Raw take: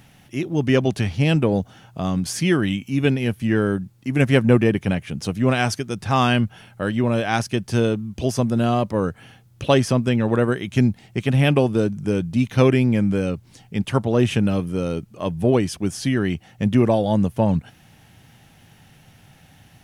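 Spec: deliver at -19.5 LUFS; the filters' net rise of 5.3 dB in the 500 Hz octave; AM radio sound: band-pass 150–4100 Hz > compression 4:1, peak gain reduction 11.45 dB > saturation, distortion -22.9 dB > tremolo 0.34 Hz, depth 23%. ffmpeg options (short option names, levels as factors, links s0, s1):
-af "highpass=150,lowpass=4100,equalizer=f=500:t=o:g=6.5,acompressor=threshold=0.1:ratio=4,asoftclip=threshold=0.266,tremolo=f=0.34:d=0.23,volume=2.37"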